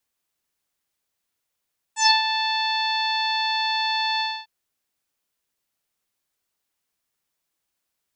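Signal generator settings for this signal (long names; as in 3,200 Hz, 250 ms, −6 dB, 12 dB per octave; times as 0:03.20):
subtractive voice saw A5 24 dB per octave, low-pass 4,100 Hz, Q 9.2, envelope 1 octave, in 0.16 s, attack 109 ms, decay 0.15 s, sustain −8 dB, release 0.26 s, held 2.24 s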